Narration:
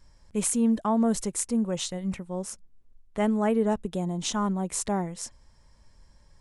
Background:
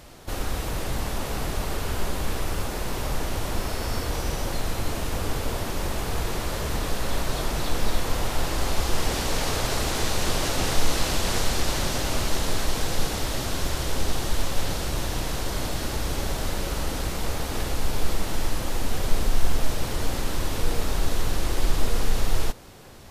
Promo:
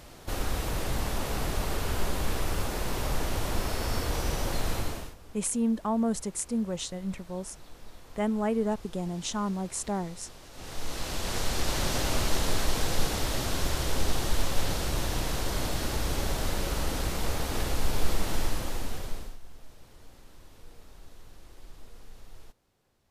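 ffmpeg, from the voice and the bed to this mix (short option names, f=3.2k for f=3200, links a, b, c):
-filter_complex "[0:a]adelay=5000,volume=-3.5dB[a];[1:a]volume=20dB,afade=t=out:st=4.75:d=0.4:silence=0.0794328,afade=t=in:st=10.51:d=1.47:silence=0.0794328,afade=t=out:st=18.36:d=1.02:silence=0.0630957[b];[a][b]amix=inputs=2:normalize=0"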